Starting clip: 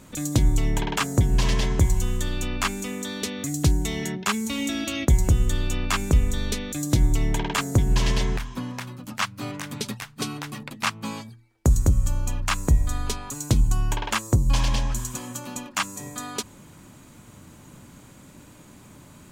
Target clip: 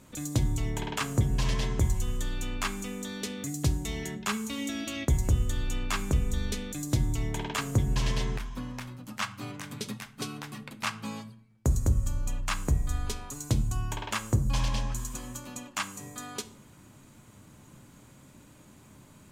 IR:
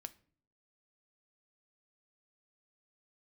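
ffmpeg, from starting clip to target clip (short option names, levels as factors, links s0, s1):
-filter_complex "[1:a]atrim=start_sample=2205,asetrate=29106,aresample=44100[s0];[0:a][s0]afir=irnorm=-1:irlink=0,volume=0.668"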